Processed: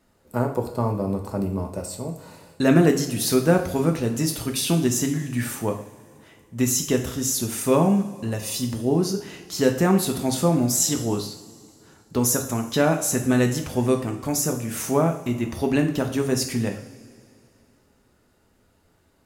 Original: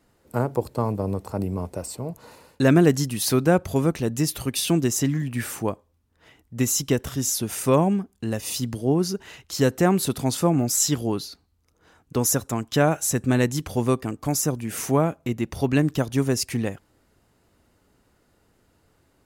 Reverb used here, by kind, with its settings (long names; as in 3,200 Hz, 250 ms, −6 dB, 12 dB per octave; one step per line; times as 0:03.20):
coupled-rooms reverb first 0.52 s, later 2.7 s, from −18 dB, DRR 3.5 dB
level −1 dB